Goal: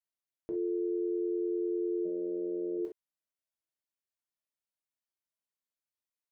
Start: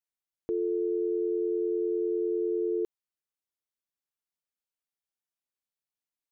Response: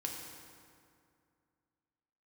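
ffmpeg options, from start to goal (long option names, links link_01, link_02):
-filter_complex "[0:a]asplit=3[link_01][link_02][link_03];[link_01]afade=type=out:start_time=2.04:duration=0.02[link_04];[link_02]tremolo=f=170:d=0.519,afade=type=in:start_time=2.04:duration=0.02,afade=type=out:start_time=2.77:duration=0.02[link_05];[link_03]afade=type=in:start_time=2.77:duration=0.02[link_06];[link_04][link_05][link_06]amix=inputs=3:normalize=0[link_07];[1:a]atrim=start_sample=2205,atrim=end_sample=6174,asetrate=88200,aresample=44100[link_08];[link_07][link_08]afir=irnorm=-1:irlink=0,volume=2dB"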